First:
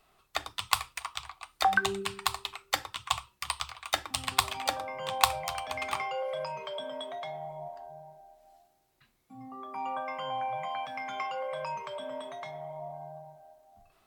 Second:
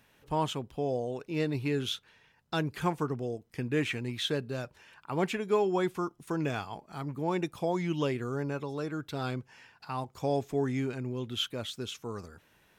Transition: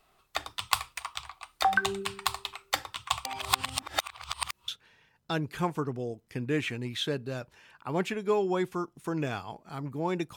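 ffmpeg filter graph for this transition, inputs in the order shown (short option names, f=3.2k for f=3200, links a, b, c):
-filter_complex "[0:a]apad=whole_dur=10.36,atrim=end=10.36,asplit=2[a][b];[a]atrim=end=3.252[c];[b]atrim=start=3.248:end=4.682,asetpts=PTS-STARTPTS,areverse[d];[1:a]atrim=start=1.908:end=7.59[e];[c][d]acrossfade=d=0.004:c1=hsin:c2=hsin[f];[f][e]acrossfade=d=0.004:c1=hsin:c2=hsin"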